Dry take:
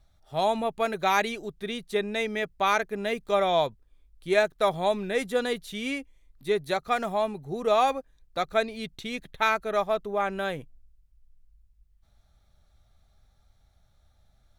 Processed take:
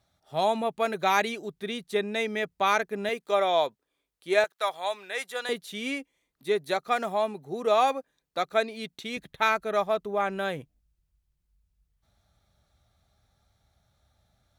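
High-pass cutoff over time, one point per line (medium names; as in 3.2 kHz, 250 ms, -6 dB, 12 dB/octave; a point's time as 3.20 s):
130 Hz
from 3.09 s 310 Hz
from 4.44 s 860 Hz
from 5.49 s 210 Hz
from 9.17 s 78 Hz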